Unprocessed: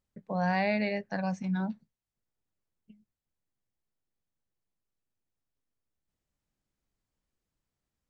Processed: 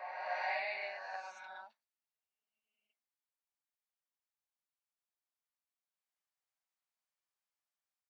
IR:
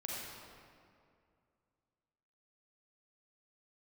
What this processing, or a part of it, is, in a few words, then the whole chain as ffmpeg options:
ghost voice: -filter_complex "[0:a]areverse[link_01];[1:a]atrim=start_sample=2205[link_02];[link_01][link_02]afir=irnorm=-1:irlink=0,areverse,highpass=frequency=740:width=0.5412,highpass=frequency=740:width=1.3066,volume=-5.5dB"

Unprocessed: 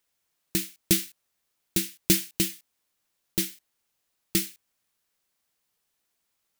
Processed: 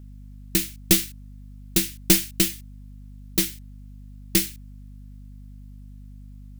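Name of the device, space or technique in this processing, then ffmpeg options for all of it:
valve amplifier with mains hum: -af "aeval=exprs='(tanh(4.47*val(0)+0.6)-tanh(0.6))/4.47':channel_layout=same,aeval=exprs='val(0)+0.00355*(sin(2*PI*50*n/s)+sin(2*PI*2*50*n/s)/2+sin(2*PI*3*50*n/s)/3+sin(2*PI*4*50*n/s)/4+sin(2*PI*5*50*n/s)/5)':channel_layout=same,volume=8dB"

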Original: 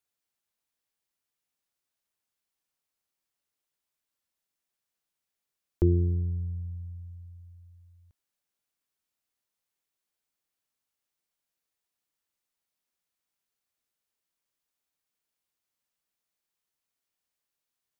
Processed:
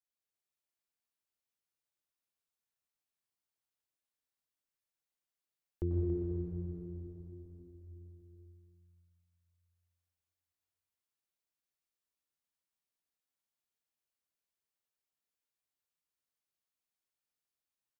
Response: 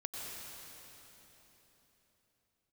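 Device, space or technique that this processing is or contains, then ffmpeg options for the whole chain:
cave: -filter_complex "[0:a]aecho=1:1:281:0.355[link_01];[1:a]atrim=start_sample=2205[link_02];[link_01][link_02]afir=irnorm=-1:irlink=0,volume=-8.5dB"

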